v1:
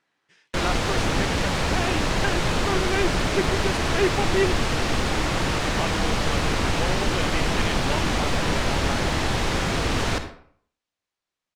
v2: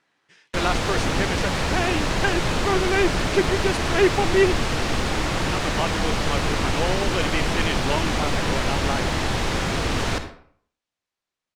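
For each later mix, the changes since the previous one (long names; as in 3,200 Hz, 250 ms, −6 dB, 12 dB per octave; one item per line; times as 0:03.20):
speech +4.5 dB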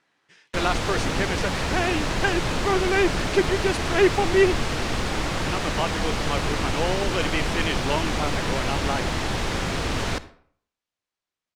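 background: send −9.5 dB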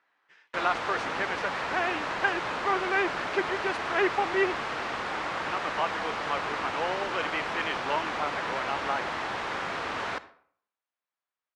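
master: add resonant band-pass 1,200 Hz, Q 0.93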